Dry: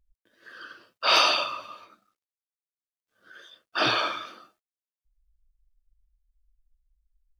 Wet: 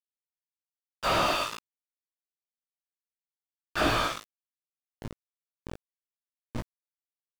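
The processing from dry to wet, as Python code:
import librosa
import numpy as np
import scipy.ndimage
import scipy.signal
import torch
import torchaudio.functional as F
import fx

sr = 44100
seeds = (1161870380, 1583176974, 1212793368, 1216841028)

y = fx.dmg_wind(x, sr, seeds[0], corner_hz=130.0, level_db=-44.0)
y = fx.peak_eq(y, sr, hz=260.0, db=7.0, octaves=0.28)
y = np.where(np.abs(y) >= 10.0 ** (-28.5 / 20.0), y, 0.0)
y = fx.doubler(y, sr, ms=18.0, db=-5.5)
y = fx.slew_limit(y, sr, full_power_hz=110.0)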